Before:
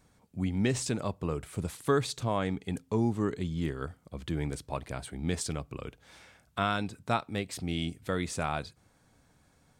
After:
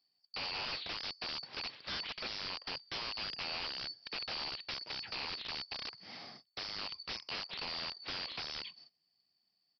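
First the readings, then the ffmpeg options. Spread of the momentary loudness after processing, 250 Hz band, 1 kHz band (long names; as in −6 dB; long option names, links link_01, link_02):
6 LU, −23.0 dB, −10.5 dB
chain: -af "afftfilt=real='real(if(lt(b,272),68*(eq(floor(b/68),0)*1+eq(floor(b/68),1)*2+eq(floor(b/68),2)*3+eq(floor(b/68),3)*0)+mod(b,68),b),0)':imag='imag(if(lt(b,272),68*(eq(floor(b/68),0)*1+eq(floor(b/68),1)*2+eq(floor(b/68),2)*3+eq(floor(b/68),3)*0)+mod(b,68),b),0)':win_size=2048:overlap=0.75,highpass=frequency=100:width=0.5412,highpass=frequency=100:width=1.3066,agate=range=-23dB:threshold=-59dB:ratio=16:detection=peak,highshelf=frequency=3700:gain=7.5,alimiter=limit=-15dB:level=0:latency=1:release=118,acompressor=threshold=-37dB:ratio=8,aresample=11025,aeval=exprs='(mod(89.1*val(0)+1,2)-1)/89.1':channel_layout=same,aresample=44100,volume=4.5dB"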